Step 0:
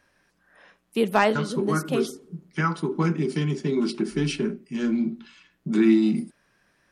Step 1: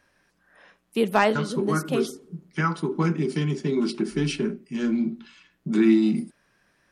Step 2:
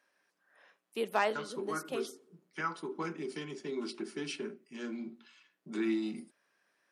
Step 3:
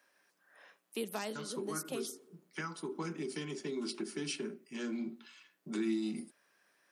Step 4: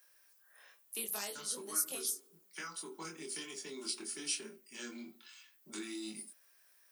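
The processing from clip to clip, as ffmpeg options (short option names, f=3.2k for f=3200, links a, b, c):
-af anull
-af "highpass=360,volume=-9dB"
-filter_complex "[0:a]highshelf=f=8.4k:g=7,acrossover=split=270|4200[a][b][c];[b]acompressor=threshold=-43dB:ratio=6[d];[a][d][c]amix=inputs=3:normalize=0,volume=3dB"
-af "aemphasis=mode=production:type=riaa,flanger=delay=22.5:depth=2.5:speed=1.1,volume=-1.5dB"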